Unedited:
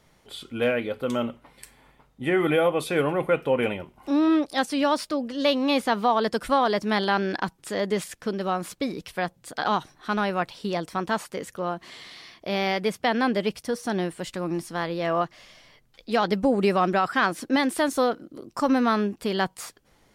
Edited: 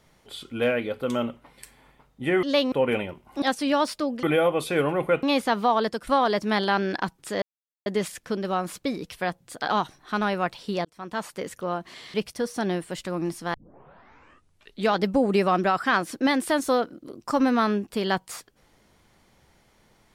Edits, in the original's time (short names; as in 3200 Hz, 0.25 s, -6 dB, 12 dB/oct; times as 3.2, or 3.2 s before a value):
2.43–3.43 swap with 5.34–5.63
4.13–4.53 cut
6.21–6.47 fade out, to -10 dB
7.82 insert silence 0.44 s
10.81–11.35 fade in
12.1–13.43 cut
14.83 tape start 1.41 s